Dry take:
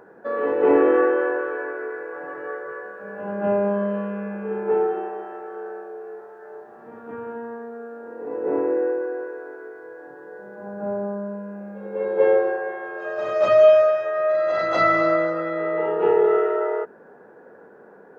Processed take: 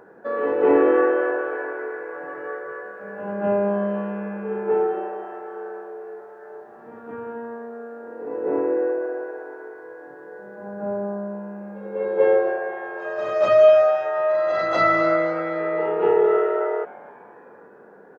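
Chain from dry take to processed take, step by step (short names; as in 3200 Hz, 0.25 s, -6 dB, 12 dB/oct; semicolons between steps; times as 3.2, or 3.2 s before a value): frequency-shifting echo 0.258 s, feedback 51%, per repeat +140 Hz, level -21.5 dB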